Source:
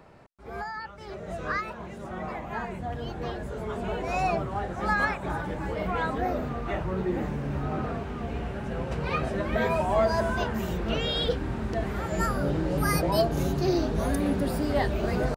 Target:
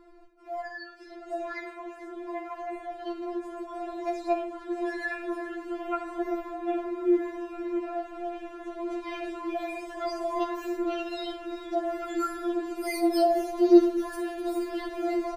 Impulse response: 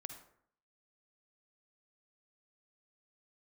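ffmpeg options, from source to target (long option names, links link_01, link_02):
-filter_complex "[0:a]lowshelf=frequency=480:gain=12,asplit=7[link_01][link_02][link_03][link_04][link_05][link_06][link_07];[link_02]adelay=451,afreqshift=66,volume=-17dB[link_08];[link_03]adelay=902,afreqshift=132,volume=-21.6dB[link_09];[link_04]adelay=1353,afreqshift=198,volume=-26.2dB[link_10];[link_05]adelay=1804,afreqshift=264,volume=-30.7dB[link_11];[link_06]adelay=2255,afreqshift=330,volume=-35.3dB[link_12];[link_07]adelay=2706,afreqshift=396,volume=-39.9dB[link_13];[link_01][link_08][link_09][link_10][link_11][link_12][link_13]amix=inputs=7:normalize=0[link_14];[1:a]atrim=start_sample=2205[link_15];[link_14][link_15]afir=irnorm=-1:irlink=0,afftfilt=real='re*4*eq(mod(b,16),0)':imag='im*4*eq(mod(b,16),0)':win_size=2048:overlap=0.75"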